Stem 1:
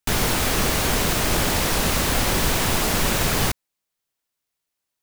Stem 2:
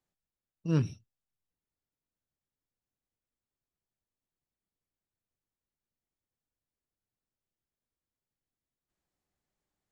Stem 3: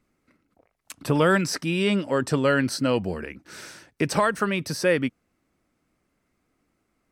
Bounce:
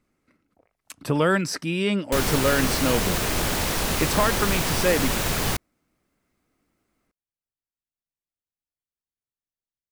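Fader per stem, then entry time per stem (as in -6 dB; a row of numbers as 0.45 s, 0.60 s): -3.5 dB, -9.0 dB, -1.0 dB; 2.05 s, 2.15 s, 0.00 s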